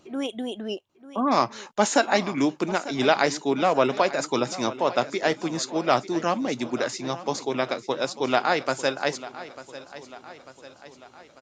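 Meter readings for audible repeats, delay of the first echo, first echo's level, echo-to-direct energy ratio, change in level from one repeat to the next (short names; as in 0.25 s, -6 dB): 4, 0.895 s, -16.0 dB, -14.5 dB, -5.5 dB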